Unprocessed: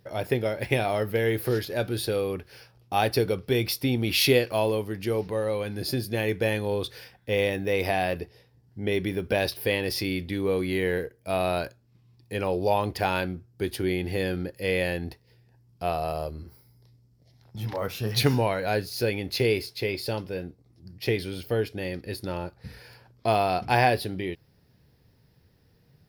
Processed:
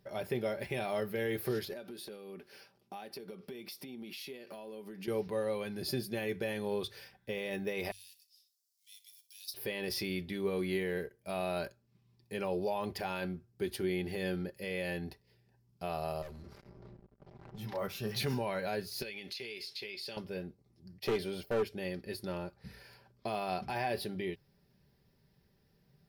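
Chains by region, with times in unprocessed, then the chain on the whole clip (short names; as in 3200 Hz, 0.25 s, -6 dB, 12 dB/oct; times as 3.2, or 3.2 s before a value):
1.73–5.08 resonant low shelf 140 Hz -13.5 dB, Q 1.5 + compressor 16:1, threshold -35 dBFS
7.91–9.54 G.711 law mismatch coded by mu + inverse Chebyshev high-pass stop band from 1100 Hz, stop band 70 dB + flutter echo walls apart 10.5 m, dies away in 0.23 s
16.22–17.58 low-pass opened by the level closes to 1100 Hz, open at -32.5 dBFS + sample leveller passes 5 + compressor 12:1, threshold -38 dBFS
19.02–20.17 weighting filter D + compressor 10:1, threshold -32 dBFS
20.99–21.63 expander -39 dBFS + bell 680 Hz +7.5 dB 1.6 oct + overloaded stage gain 20.5 dB
whole clip: limiter -17.5 dBFS; notches 50/100 Hz; comb 5.1 ms, depth 50%; gain -7.5 dB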